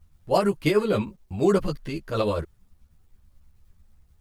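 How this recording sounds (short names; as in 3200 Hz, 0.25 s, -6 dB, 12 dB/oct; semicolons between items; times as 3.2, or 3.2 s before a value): tremolo triangle 9.3 Hz, depth 55%; a quantiser's noise floor 12-bit, dither none; a shimmering, thickened sound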